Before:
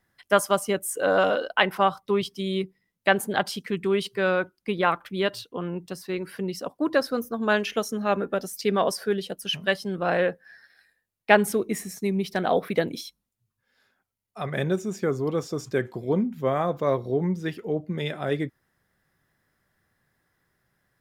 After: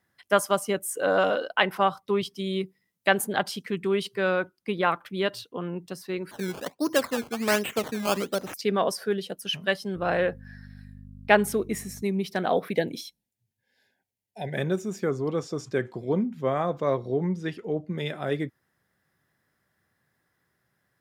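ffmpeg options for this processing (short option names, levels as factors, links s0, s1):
-filter_complex "[0:a]asettb=1/sr,asplit=3[s0][s1][s2];[s0]atrim=end=2.634[s3];[s1]atrim=start=2.63:end=3.27,asetpts=PTS-STARTPTS,afade=t=in:d=0.004:c=qsin,afade=t=out:st=0.636:d=0.004:c=qsin,highshelf=f=4800:g=6[s4];[s2]atrim=start=3.266[s5];[s3][s4]acrossfade=d=0.004:c1=hsin:c2=qsin[s6];[s6][s5]acrossfade=d=0.004:c1=qsin:c2=hsin,asettb=1/sr,asplit=3[s7][s8][s9];[s7]atrim=end=6.314[s10];[s8]atrim=start=6.31:end=8.54,asetpts=PTS-STARTPTS,afade=t=in:d=0.004:c=qsin,afade=t=out:st=2.226:d=0.004:c=qsin,acrusher=samples=16:mix=1:aa=0.000001:lfo=1:lforange=16:lforate=1.3[s11];[s9]atrim=start=8.536[s12];[s10][s11]acrossfade=d=0.004:c1=hsin:c2=qsin[s13];[s13][s12]acrossfade=d=0.004:c1=qsin:c2=hsin,asettb=1/sr,asplit=3[s14][s15][s16];[s14]atrim=end=9.954[s17];[s15]atrim=start=9.95:end=12.02,asetpts=PTS-STARTPTS,afade=t=in:d=0.004:c=qsin,afade=t=out:st=2.066:d=0.004:c=qsin,aeval=exprs='val(0)+0.0126*(sin(2*PI*50*n/s)+sin(2*PI*2*50*n/s)/2+sin(2*PI*3*50*n/s)/3+sin(2*PI*4*50*n/s)/4+sin(2*PI*5*50*n/s)/5)':c=same[s18];[s16]atrim=start=12.016[s19];[s17][s18]acrossfade=d=0.004:c1=hsin:c2=qsin[s20];[s20][s19]acrossfade=d=0.004:c1=qsin:c2=hsin,asettb=1/sr,asplit=3[s21][s22][s23];[s21]atrim=end=12.704[s24];[s22]atrim=start=12.7:end=14.57,asetpts=PTS-STARTPTS,afade=t=in:d=0.004:c=qsin,afade=t=out:st=1.866:d=0.004:c=qsin,asuperstop=centerf=1200:order=8:qfactor=2[s25];[s23]atrim=start=14.566[s26];[s24][s25]acrossfade=d=0.004:c1=hsin:c2=qsin[s27];[s27][s26]acrossfade=d=0.004:c1=qsin:c2=hsin,asettb=1/sr,asplit=3[s28][s29][s30];[s28]atrim=end=15.094[s31];[s29]atrim=start=15.09:end=17.96,asetpts=PTS-STARTPTS,afade=t=in:d=0.004:c=qsin,afade=t=out:st=2.866:d=0.004:c=qsin,lowpass=9000[s32];[s30]atrim=start=17.956[s33];[s31][s32]acrossfade=d=0.004:c1=hsin:c2=qsin[s34];[s34][s33]acrossfade=d=0.004:c1=qsin:c2=hsin,highpass=76,volume=0.841"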